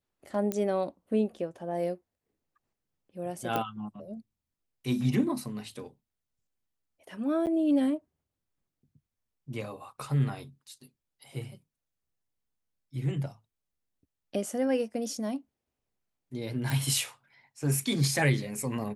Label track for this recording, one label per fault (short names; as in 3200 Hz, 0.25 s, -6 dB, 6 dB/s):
0.520000	0.520000	pop -16 dBFS
3.560000	3.560000	pop -16 dBFS
7.460000	7.470000	gap 8.9 ms
16.700000	16.700000	pop